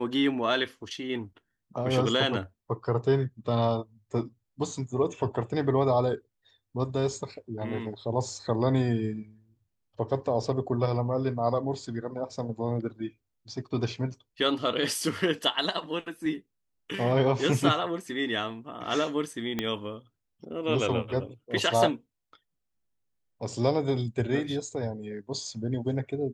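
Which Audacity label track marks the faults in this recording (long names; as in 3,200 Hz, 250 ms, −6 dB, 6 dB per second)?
19.590000	19.590000	click −14 dBFS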